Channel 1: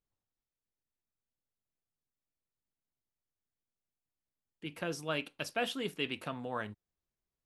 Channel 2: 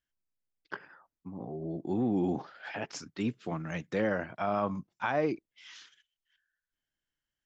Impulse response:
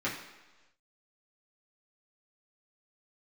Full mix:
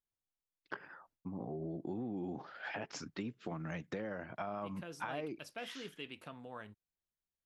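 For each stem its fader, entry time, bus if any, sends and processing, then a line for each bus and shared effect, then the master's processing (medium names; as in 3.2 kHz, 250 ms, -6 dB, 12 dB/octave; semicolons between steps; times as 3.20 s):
-9.0 dB, 0.00 s, no send, none
+3.0 dB, 0.00 s, no send, gate with hold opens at -59 dBFS; treble shelf 5 kHz -8 dB; compression 6:1, threshold -37 dBFS, peak gain reduction 12 dB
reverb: none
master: compression 1.5:1, threshold -44 dBFS, peak gain reduction 5 dB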